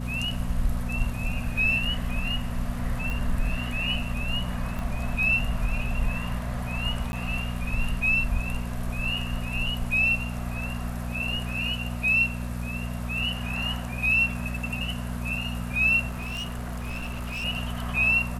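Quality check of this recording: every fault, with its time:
hum 60 Hz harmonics 4 -32 dBFS
3.10 s: pop
4.79 s: pop
7.12–7.13 s: dropout
16.08–17.45 s: clipped -28.5 dBFS

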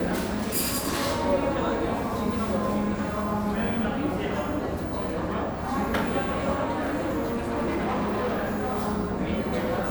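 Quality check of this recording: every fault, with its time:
6.72–8.88 s: clipped -23.5 dBFS

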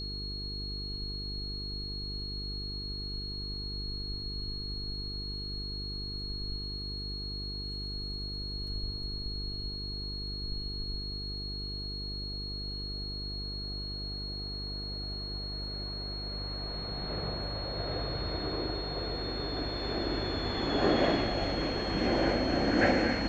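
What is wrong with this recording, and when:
buzz 50 Hz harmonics 9 -40 dBFS
whine 4.3 kHz -38 dBFS

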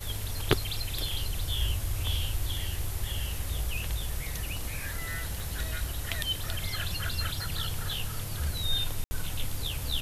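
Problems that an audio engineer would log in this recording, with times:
5.40 s: pop
9.04–9.11 s: dropout 70 ms

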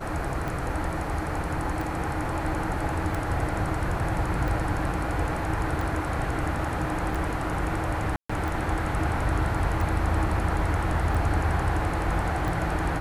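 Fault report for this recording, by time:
tick 45 rpm
8.16–8.29 s: dropout 135 ms

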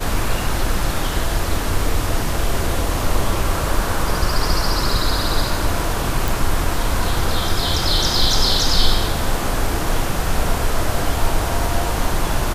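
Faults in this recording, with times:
6.28 s: pop

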